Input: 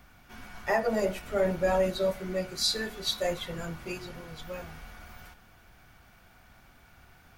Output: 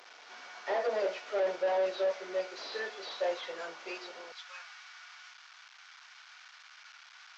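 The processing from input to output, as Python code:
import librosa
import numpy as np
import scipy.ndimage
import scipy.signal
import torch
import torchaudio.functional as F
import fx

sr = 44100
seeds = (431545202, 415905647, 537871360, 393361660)

y = fx.delta_mod(x, sr, bps=32000, step_db=-44.5)
y = fx.highpass(y, sr, hz=fx.steps((0.0, 420.0), (4.32, 1100.0)), slope=24)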